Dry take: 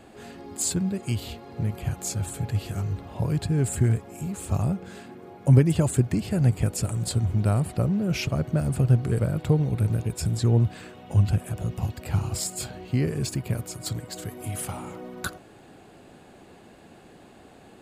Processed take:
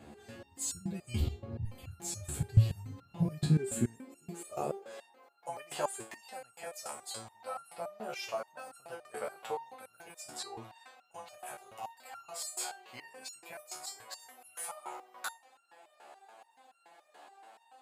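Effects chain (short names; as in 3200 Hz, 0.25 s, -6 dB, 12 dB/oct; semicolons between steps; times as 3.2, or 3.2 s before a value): high-pass sweep 80 Hz -> 790 Hz, 2.47–5.36; 1.2–1.65 tilt -3.5 dB/oct; stepped resonator 7 Hz 73–1400 Hz; gain +4.5 dB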